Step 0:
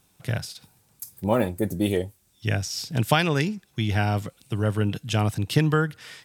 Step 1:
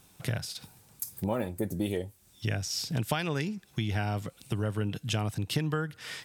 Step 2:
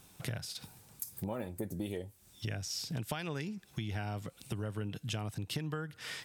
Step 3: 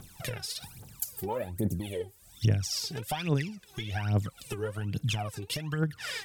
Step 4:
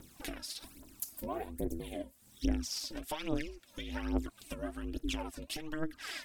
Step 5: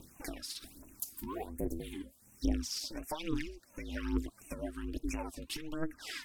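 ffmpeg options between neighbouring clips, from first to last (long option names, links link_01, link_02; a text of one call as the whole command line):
ffmpeg -i in.wav -af "acompressor=threshold=-35dB:ratio=3,volume=4dB" out.wav
ffmpeg -i in.wav -af "acompressor=threshold=-40dB:ratio=2" out.wav
ffmpeg -i in.wav -af "aphaser=in_gain=1:out_gain=1:delay=2.7:decay=0.8:speed=1.2:type=triangular,volume=2dB" out.wav
ffmpeg -i in.wav -af "aeval=exprs='val(0)*sin(2*PI*160*n/s)':channel_layout=same,volume=-3dB" out.wav
ffmpeg -i in.wav -af "afftfilt=real='re*(1-between(b*sr/1024,560*pow(4100/560,0.5+0.5*sin(2*PI*1.4*pts/sr))/1.41,560*pow(4100/560,0.5+0.5*sin(2*PI*1.4*pts/sr))*1.41))':imag='im*(1-between(b*sr/1024,560*pow(4100/560,0.5+0.5*sin(2*PI*1.4*pts/sr))/1.41,560*pow(4100/560,0.5+0.5*sin(2*PI*1.4*pts/sr))*1.41))':win_size=1024:overlap=0.75" out.wav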